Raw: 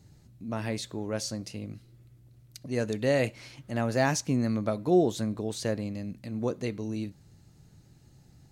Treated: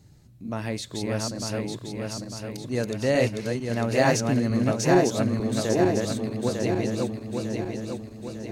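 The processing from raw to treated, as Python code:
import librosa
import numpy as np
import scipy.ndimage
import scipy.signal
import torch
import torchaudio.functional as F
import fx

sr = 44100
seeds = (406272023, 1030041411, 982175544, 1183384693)

y = fx.reverse_delay_fb(x, sr, ms=450, feedback_pct=70, wet_db=-1.5)
y = y * 10.0 ** (2.0 / 20.0)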